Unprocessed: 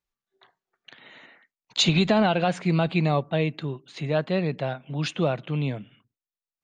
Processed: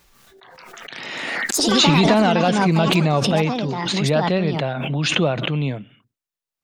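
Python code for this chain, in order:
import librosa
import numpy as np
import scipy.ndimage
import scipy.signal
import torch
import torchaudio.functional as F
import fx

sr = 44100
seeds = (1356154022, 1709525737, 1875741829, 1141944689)

y = fx.echo_pitch(x, sr, ms=268, semitones=5, count=3, db_per_echo=-6.0)
y = fx.pre_swell(y, sr, db_per_s=24.0)
y = y * 10.0 ** (4.0 / 20.0)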